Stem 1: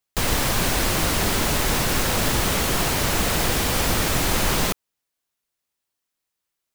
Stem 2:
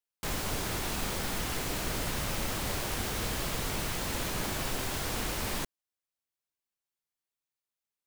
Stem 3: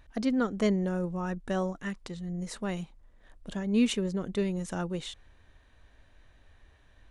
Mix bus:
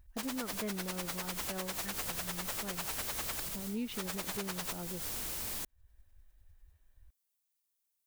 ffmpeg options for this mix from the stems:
-filter_complex "[0:a]highpass=560,aeval=exprs='val(0)*pow(10,-28*(0.5-0.5*cos(2*PI*10*n/s))/20)':c=same,volume=-1dB,asplit=3[a][b][c];[a]atrim=end=3.4,asetpts=PTS-STARTPTS,afade=t=out:st=3.396:d=0.004:c=hsin[d];[b]atrim=start=3.4:end=3.97,asetpts=PTS-STARTPTS,volume=0[e];[c]atrim=start=3.97,asetpts=PTS-STARTPTS,afade=t=in:d=0.004:c=hsin[f];[d][e][f]concat=n=3:v=0:a=1[g];[1:a]crystalizer=i=2.5:c=0,volume=-3dB[h];[2:a]afwtdn=0.01,volume=-1.5dB,asplit=2[i][j];[j]apad=whole_len=355810[k];[h][k]sidechaincompress=threshold=-38dB:ratio=5:attack=5.9:release=123[l];[g][l][i]amix=inputs=3:normalize=0,acompressor=threshold=-44dB:ratio=2"

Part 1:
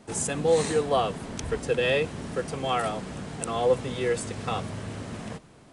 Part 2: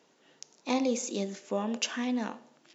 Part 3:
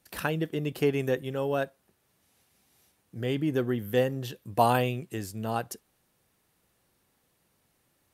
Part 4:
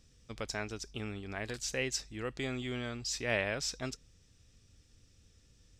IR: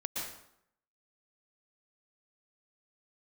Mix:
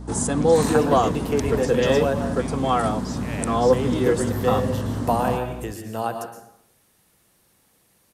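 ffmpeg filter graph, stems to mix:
-filter_complex "[0:a]equalizer=f=100:t=o:w=0.67:g=7,equalizer=f=250:t=o:w=0.67:g=10,equalizer=f=1k:t=o:w=0.67:g=6,equalizer=f=2.5k:t=o:w=0.67:g=-9,aeval=exprs='val(0)+0.0126*(sin(2*PI*60*n/s)+sin(2*PI*2*60*n/s)/2+sin(2*PI*3*60*n/s)/3+sin(2*PI*4*60*n/s)/4+sin(2*PI*5*60*n/s)/5)':c=same,volume=3dB[a];[1:a]volume=-7dB[b];[2:a]lowpass=12k,highshelf=f=7.8k:g=10,acrossover=split=380|1400[c][d][e];[c]acompressor=threshold=-41dB:ratio=4[f];[d]acompressor=threshold=-26dB:ratio=4[g];[e]acompressor=threshold=-48dB:ratio=4[h];[f][g][h]amix=inputs=3:normalize=0,adelay=500,volume=2.5dB,asplit=2[i][j];[j]volume=-3dB[k];[3:a]volume=-4dB[l];[4:a]atrim=start_sample=2205[m];[k][m]afir=irnorm=-1:irlink=0[n];[a][b][i][l][n]amix=inputs=5:normalize=0"

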